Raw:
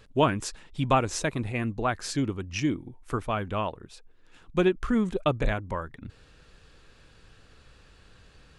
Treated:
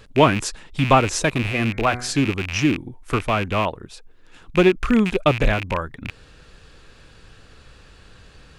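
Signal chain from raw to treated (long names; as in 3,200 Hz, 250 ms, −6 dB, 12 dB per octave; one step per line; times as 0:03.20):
loose part that buzzes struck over −37 dBFS, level −23 dBFS
0:01.48–0:02.28: hum removal 122.9 Hz, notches 19
level +7.5 dB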